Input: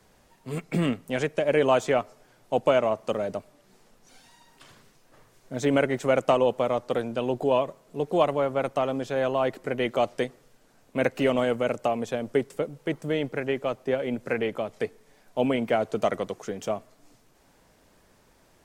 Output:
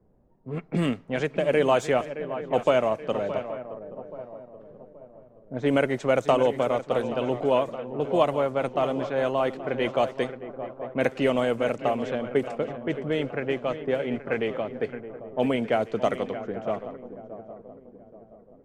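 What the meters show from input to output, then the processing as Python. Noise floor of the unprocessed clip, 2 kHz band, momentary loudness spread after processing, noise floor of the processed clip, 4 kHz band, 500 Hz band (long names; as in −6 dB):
−61 dBFS, +0.5 dB, 16 LU, −54 dBFS, 0.0 dB, +0.5 dB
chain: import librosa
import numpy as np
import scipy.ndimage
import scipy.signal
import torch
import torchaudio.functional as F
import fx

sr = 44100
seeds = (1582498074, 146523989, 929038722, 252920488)

y = fx.echo_swing(x, sr, ms=827, ratio=3, feedback_pct=45, wet_db=-12.0)
y = fx.env_lowpass(y, sr, base_hz=450.0, full_db=-20.0)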